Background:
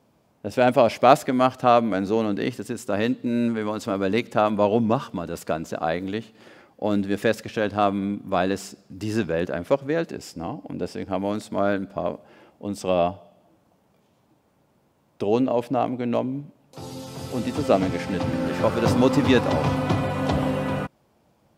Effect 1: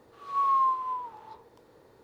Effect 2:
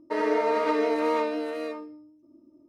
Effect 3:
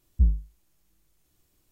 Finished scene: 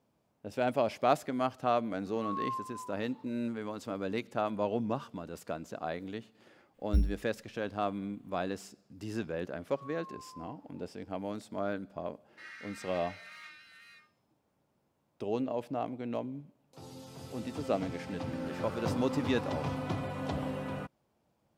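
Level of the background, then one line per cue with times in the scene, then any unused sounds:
background -12 dB
1.88 add 1 -12.5 dB
6.74 add 3 -6.5 dB + careless resampling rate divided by 8×, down none, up hold
9.48 add 1 -18 dB + compressor, threshold -29 dBFS
12.27 add 2 -10.5 dB + steep high-pass 1400 Hz 48 dB/oct

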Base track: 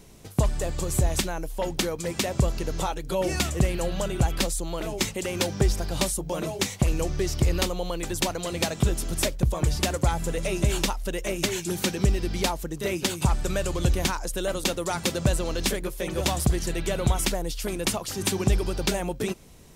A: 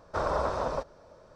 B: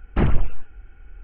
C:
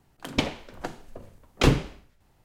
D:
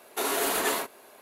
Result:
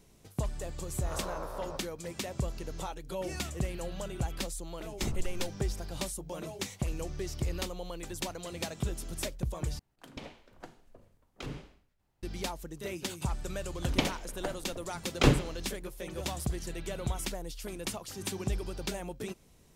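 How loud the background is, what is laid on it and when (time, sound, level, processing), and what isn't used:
base track -10.5 dB
0.97 add A -12.5 dB + spectral swells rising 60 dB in 0.39 s
4.85 add B -16 dB + LPF 1100 Hz
9.79 replace with C -13.5 dB + limiter -16.5 dBFS
13.6 add C -3.5 dB
not used: D

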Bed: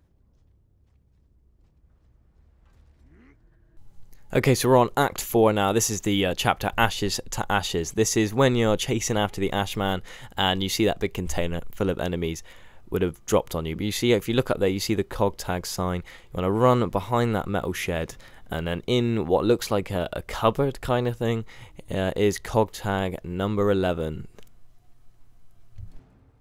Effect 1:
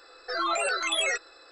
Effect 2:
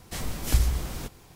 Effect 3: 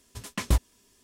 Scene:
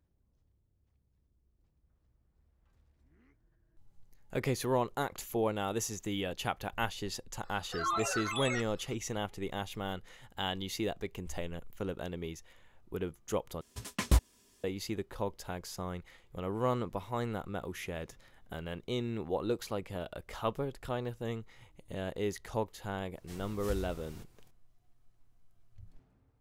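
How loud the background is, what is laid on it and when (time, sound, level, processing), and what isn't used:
bed -12.5 dB
7.44 add 1 -11 dB + bell 1100 Hz +8.5 dB 0.7 oct
13.61 replace with 3 -2.5 dB
23.16 add 2 -16.5 dB

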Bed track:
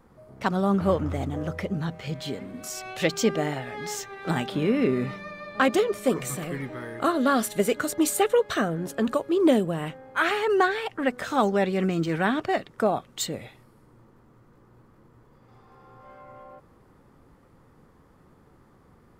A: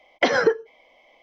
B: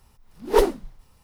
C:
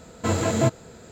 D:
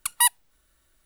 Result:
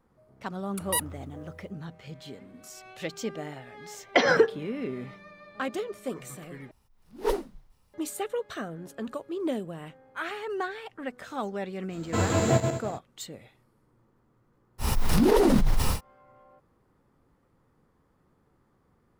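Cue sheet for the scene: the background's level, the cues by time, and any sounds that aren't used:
bed track -10.5 dB
0.72 add D -8.5 dB, fades 0.10 s
3.93 add A -1.5 dB
6.71 replace with B -9.5 dB
11.89 add C -3 dB, fades 0.05 s + regenerating reverse delay 0.102 s, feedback 51%, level -5 dB
14.78 add B -7 dB, fades 0.10 s + fast leveller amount 100%

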